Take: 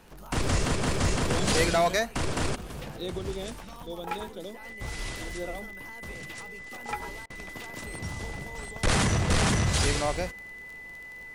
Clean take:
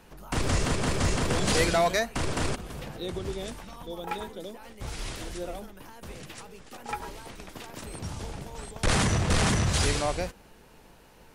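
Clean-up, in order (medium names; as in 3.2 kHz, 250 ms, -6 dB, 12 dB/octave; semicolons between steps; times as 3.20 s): de-click; band-stop 2 kHz, Q 30; interpolate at 7.26 s, 40 ms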